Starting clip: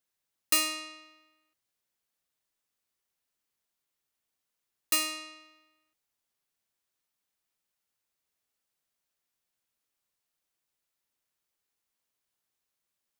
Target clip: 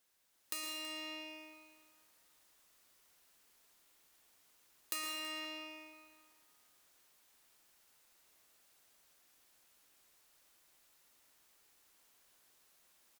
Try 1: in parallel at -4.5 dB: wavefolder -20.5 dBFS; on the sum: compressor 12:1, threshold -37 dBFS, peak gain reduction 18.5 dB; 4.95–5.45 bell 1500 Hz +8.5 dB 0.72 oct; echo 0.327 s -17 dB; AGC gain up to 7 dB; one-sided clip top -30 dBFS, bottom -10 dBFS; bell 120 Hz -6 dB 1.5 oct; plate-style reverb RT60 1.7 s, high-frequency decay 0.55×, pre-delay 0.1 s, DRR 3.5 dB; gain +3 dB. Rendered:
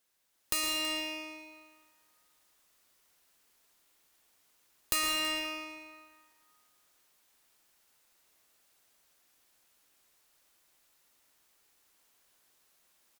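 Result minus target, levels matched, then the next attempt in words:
compressor: peak gain reduction -11 dB
in parallel at -4.5 dB: wavefolder -20.5 dBFS; on the sum: compressor 12:1, threshold -49 dBFS, peak gain reduction 29.5 dB; 4.95–5.45 bell 1500 Hz +8.5 dB 0.72 oct; echo 0.327 s -17 dB; AGC gain up to 7 dB; one-sided clip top -30 dBFS, bottom -10 dBFS; bell 120 Hz -6 dB 1.5 oct; plate-style reverb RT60 1.7 s, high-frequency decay 0.55×, pre-delay 0.1 s, DRR 3.5 dB; gain +3 dB

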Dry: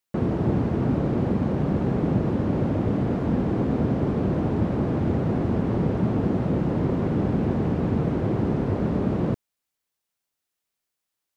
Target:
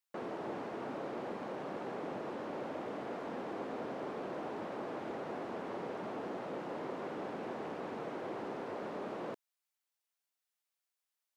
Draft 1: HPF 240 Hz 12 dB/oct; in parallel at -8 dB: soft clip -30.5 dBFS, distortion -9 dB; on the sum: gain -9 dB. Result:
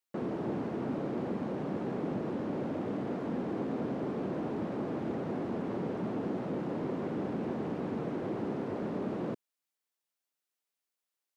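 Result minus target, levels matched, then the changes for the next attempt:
250 Hz band +4.0 dB
change: HPF 570 Hz 12 dB/oct

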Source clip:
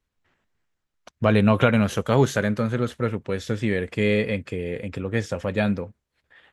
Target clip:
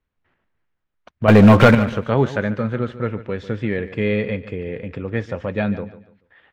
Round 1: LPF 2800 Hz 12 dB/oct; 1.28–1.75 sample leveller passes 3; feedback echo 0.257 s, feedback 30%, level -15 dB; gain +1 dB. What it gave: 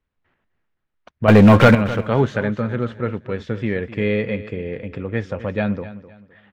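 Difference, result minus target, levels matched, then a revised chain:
echo 0.112 s late
LPF 2800 Hz 12 dB/oct; 1.28–1.75 sample leveller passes 3; feedback echo 0.145 s, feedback 30%, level -15 dB; gain +1 dB

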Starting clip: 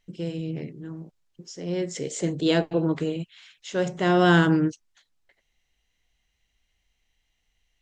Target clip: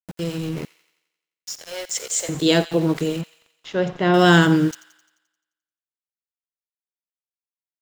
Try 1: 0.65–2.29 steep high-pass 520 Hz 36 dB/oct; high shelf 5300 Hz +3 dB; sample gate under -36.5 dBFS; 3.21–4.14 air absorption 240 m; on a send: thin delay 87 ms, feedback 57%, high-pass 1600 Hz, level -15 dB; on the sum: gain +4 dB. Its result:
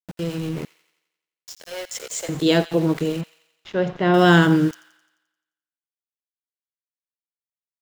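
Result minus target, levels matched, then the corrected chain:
8000 Hz band -6.0 dB
0.65–2.29 steep high-pass 520 Hz 36 dB/oct; high shelf 5300 Hz +12.5 dB; sample gate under -36.5 dBFS; 3.21–4.14 air absorption 240 m; on a send: thin delay 87 ms, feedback 57%, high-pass 1600 Hz, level -15 dB; on the sum: gain +4 dB

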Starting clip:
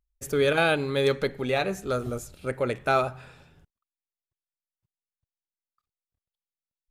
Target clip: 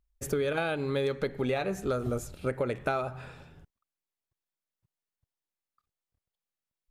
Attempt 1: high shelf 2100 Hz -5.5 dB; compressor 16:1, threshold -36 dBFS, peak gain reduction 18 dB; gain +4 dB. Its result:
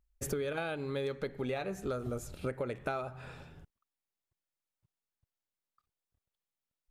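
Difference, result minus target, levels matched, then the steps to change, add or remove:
compressor: peak gain reduction +6 dB
change: compressor 16:1, threshold -29.5 dBFS, peak gain reduction 12 dB

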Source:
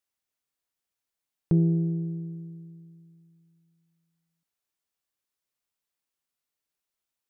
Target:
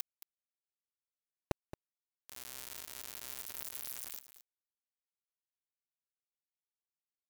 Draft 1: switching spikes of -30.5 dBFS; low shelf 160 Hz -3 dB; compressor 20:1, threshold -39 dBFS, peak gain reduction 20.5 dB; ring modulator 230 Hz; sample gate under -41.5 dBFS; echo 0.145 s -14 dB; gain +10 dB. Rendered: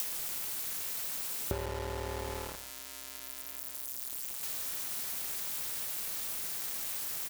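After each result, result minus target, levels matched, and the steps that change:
sample gate: distortion -16 dB; echo 77 ms early
change: sample gate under -34.5 dBFS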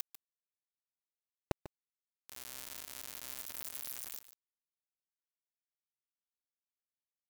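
echo 77 ms early
change: echo 0.222 s -14 dB

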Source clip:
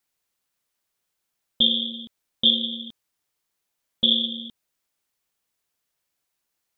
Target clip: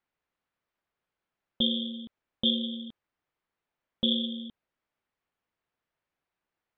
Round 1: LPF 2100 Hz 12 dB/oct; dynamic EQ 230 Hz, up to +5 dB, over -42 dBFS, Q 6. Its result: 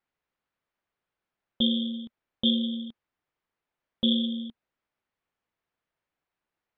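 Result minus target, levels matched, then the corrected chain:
250 Hz band +3.0 dB
LPF 2100 Hz 12 dB/oct; dynamic EQ 60 Hz, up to +5 dB, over -42 dBFS, Q 6

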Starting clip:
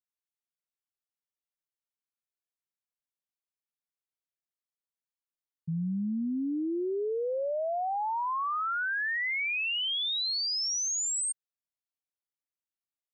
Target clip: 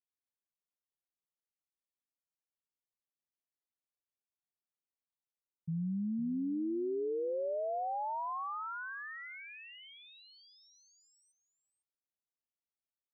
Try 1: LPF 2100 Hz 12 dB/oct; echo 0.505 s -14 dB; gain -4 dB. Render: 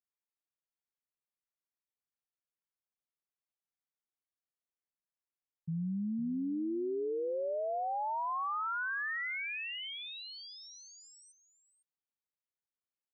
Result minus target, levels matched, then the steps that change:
2000 Hz band +7.0 dB
change: LPF 1000 Hz 12 dB/oct

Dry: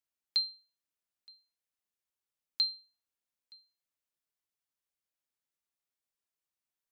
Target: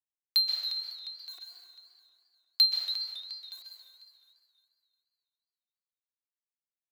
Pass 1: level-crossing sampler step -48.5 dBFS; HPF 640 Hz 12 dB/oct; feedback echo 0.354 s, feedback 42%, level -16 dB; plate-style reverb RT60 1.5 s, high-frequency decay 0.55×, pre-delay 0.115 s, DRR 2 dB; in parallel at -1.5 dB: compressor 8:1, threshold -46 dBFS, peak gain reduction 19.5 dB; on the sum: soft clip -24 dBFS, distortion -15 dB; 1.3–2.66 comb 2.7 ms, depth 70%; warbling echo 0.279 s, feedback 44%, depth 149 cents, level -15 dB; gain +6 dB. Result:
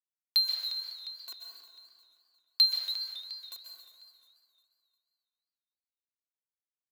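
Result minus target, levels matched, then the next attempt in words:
level-crossing sampler: distortion +11 dB; compressor: peak gain reduction +5.5 dB
level-crossing sampler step -59 dBFS; HPF 640 Hz 12 dB/oct; feedback echo 0.354 s, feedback 42%, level -16 dB; plate-style reverb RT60 1.5 s, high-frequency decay 0.55×, pre-delay 0.115 s, DRR 2 dB; in parallel at -1.5 dB: compressor 8:1, threshold -39.5 dBFS, peak gain reduction 14 dB; on the sum: soft clip -24 dBFS, distortion -13 dB; 1.3–2.66 comb 2.7 ms, depth 70%; warbling echo 0.279 s, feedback 44%, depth 149 cents, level -15 dB; gain +6 dB

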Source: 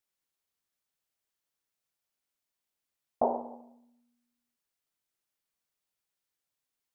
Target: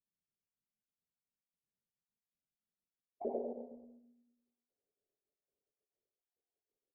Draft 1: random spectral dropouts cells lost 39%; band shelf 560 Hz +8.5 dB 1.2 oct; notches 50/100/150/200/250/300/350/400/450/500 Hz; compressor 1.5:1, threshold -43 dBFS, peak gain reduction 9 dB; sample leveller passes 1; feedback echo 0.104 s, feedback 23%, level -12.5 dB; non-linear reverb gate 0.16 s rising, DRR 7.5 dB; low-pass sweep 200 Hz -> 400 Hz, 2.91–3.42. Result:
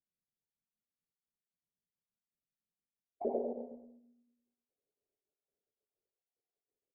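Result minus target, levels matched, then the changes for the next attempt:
compressor: peak gain reduction -3.5 dB
change: compressor 1.5:1, threshold -53.5 dBFS, peak gain reduction 12.5 dB

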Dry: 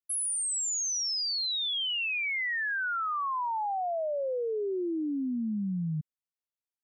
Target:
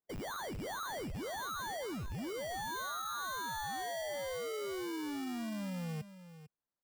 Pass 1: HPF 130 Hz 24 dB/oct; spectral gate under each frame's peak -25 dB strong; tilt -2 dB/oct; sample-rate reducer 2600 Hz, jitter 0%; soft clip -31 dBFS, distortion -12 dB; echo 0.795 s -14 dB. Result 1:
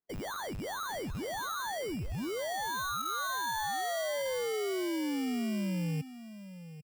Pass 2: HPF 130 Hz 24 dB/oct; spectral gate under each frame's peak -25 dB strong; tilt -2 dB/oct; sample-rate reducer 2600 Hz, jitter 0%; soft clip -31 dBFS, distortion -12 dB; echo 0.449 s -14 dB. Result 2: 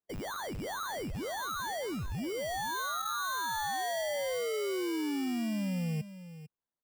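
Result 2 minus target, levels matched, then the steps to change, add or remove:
soft clip: distortion -5 dB
change: soft clip -38.5 dBFS, distortion -7 dB

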